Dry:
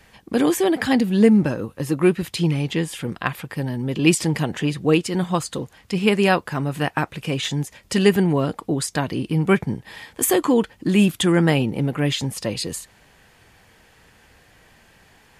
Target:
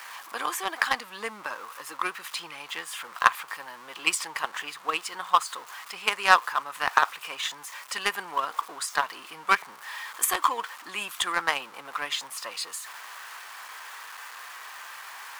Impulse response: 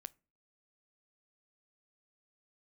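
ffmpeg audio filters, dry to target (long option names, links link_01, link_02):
-af "aeval=exprs='val(0)+0.5*0.0282*sgn(val(0))':channel_layout=same,highpass=frequency=1100:width_type=q:width=3.5,aeval=exprs='1.06*(cos(1*acos(clip(val(0)/1.06,-1,1)))-cos(1*PI/2))+0.0841*(cos(7*acos(clip(val(0)/1.06,-1,1)))-cos(7*PI/2))':channel_layout=same,volume=-1dB"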